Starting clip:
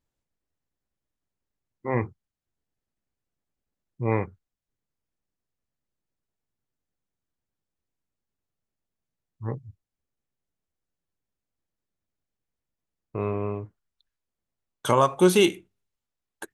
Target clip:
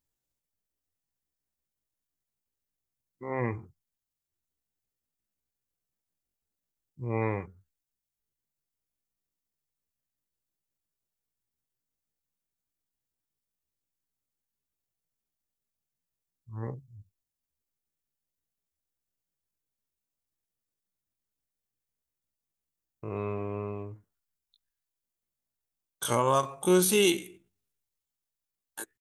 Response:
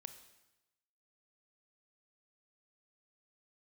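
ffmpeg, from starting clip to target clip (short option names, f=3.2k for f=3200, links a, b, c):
-af "crystalizer=i=2:c=0,atempo=0.57,volume=-6dB"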